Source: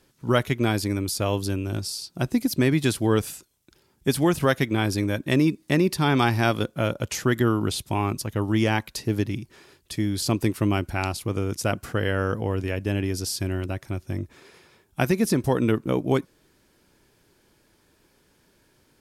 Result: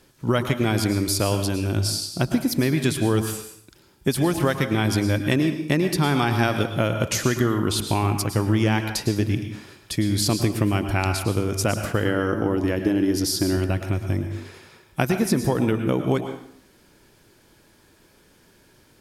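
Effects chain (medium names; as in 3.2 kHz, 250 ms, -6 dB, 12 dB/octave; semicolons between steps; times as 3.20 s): 12.03–13.57 s: graphic EQ with 31 bands 100 Hz -8 dB, 315 Hz +11 dB, 2.5 kHz -8 dB, 8 kHz -5 dB; compression, threshold -23 dBFS, peak gain reduction 8.5 dB; plate-style reverb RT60 0.65 s, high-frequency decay 0.85×, pre-delay 95 ms, DRR 7 dB; trim +5.5 dB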